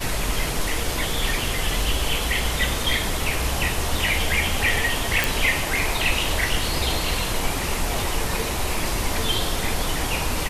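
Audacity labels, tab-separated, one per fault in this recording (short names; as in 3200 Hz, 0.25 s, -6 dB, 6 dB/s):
5.240000	5.240000	pop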